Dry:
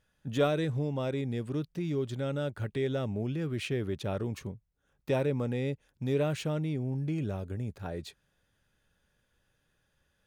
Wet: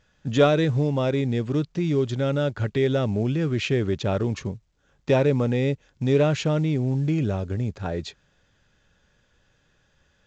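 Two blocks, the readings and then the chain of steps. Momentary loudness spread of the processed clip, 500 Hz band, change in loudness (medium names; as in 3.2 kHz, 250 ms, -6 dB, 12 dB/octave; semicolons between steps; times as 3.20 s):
8 LU, +9.0 dB, +9.0 dB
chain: trim +9 dB; µ-law 128 kbps 16 kHz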